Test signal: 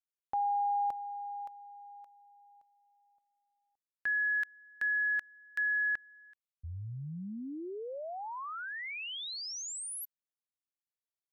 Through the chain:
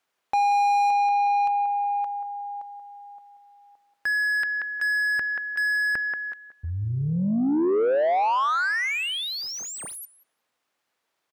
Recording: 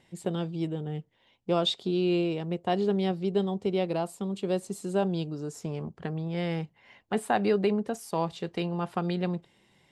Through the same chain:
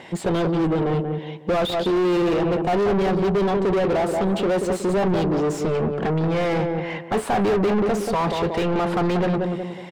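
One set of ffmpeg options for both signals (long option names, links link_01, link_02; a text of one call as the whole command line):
ffmpeg -i in.wav -filter_complex "[0:a]asplit=2[link_01][link_02];[link_02]adelay=183,lowpass=frequency=1100:poles=1,volume=-9.5dB,asplit=2[link_03][link_04];[link_04]adelay=183,lowpass=frequency=1100:poles=1,volume=0.35,asplit=2[link_05][link_06];[link_06]adelay=183,lowpass=frequency=1100:poles=1,volume=0.35,asplit=2[link_07][link_08];[link_08]adelay=183,lowpass=frequency=1100:poles=1,volume=0.35[link_09];[link_01][link_03][link_05][link_07][link_09]amix=inputs=5:normalize=0,asplit=2[link_10][link_11];[link_11]highpass=frequency=720:poles=1,volume=36dB,asoftclip=type=tanh:threshold=-12.5dB[link_12];[link_10][link_12]amix=inputs=2:normalize=0,lowpass=frequency=1100:poles=1,volume=-6dB" out.wav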